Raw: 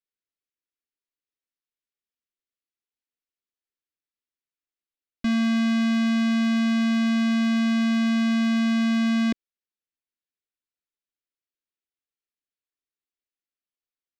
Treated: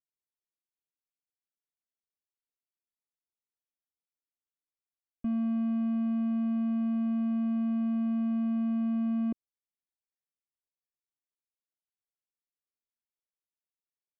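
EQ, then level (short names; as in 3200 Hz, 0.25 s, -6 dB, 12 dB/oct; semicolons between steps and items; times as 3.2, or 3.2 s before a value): running mean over 24 samples; air absorption 320 m; -6.5 dB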